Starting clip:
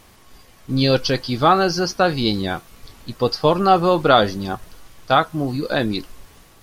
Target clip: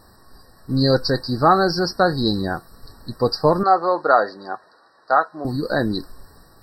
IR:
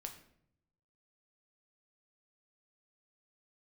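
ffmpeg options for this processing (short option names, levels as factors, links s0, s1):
-filter_complex "[0:a]asettb=1/sr,asplit=3[s0][s1][s2];[s0]atrim=end=3.634[s3];[s1]atrim=start=3.63:end=5.45,asetpts=PTS-STARTPTS,afade=t=in:d=0.004:c=qsin,afade=t=out:st=1.816:d=0.004:c=qsin,highpass=510,lowpass=3400[s4];[s2]atrim=start=5.446[s5];[s3][s4]acrossfade=d=0.004:c1=hsin:c2=qsin[s6];[s6][s5]acrossfade=d=0.004:c1=qsin:c2=hsin,afftfilt=real='re*eq(mod(floor(b*sr/1024/1900),2),0)':imag='im*eq(mod(floor(b*sr/1024/1900),2),0)':win_size=1024:overlap=0.75"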